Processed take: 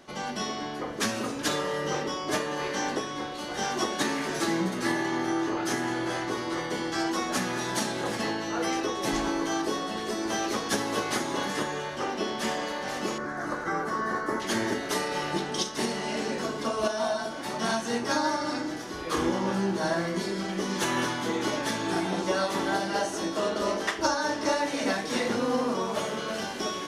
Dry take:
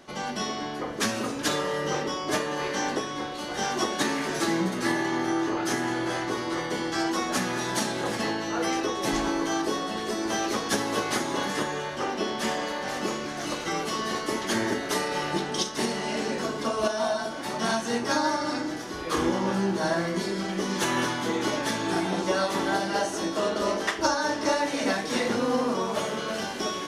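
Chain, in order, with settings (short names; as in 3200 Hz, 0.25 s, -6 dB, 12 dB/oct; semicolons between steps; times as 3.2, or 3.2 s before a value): 13.18–14.4 resonant high shelf 2100 Hz -9.5 dB, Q 3; gain -1.5 dB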